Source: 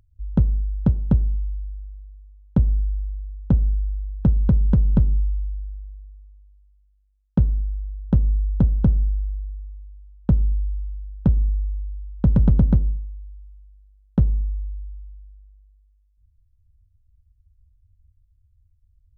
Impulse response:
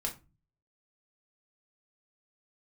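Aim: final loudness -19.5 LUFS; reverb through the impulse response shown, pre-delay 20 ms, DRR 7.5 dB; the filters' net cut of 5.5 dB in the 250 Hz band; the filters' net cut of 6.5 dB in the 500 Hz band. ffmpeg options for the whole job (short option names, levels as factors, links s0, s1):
-filter_complex "[0:a]equalizer=f=250:t=o:g=-8,equalizer=f=500:t=o:g=-5.5,asplit=2[s0][s1];[1:a]atrim=start_sample=2205,adelay=20[s2];[s1][s2]afir=irnorm=-1:irlink=0,volume=0.335[s3];[s0][s3]amix=inputs=2:normalize=0,volume=1.19"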